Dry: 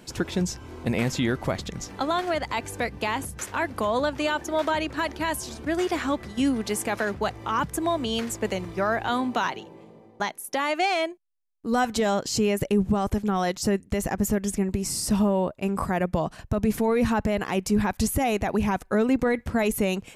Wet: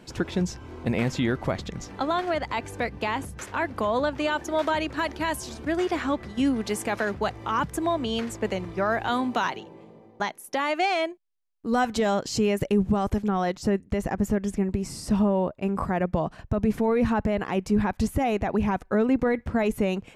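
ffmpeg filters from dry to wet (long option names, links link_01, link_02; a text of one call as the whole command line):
ffmpeg -i in.wav -af "asetnsamples=nb_out_samples=441:pad=0,asendcmd='4.32 lowpass f 7600;5.72 lowpass f 3800;6.58 lowpass f 6300;7.86 lowpass f 3700;8.9 lowpass f 9700;9.58 lowpass f 5000;13.28 lowpass f 2200',lowpass=frequency=3700:poles=1" out.wav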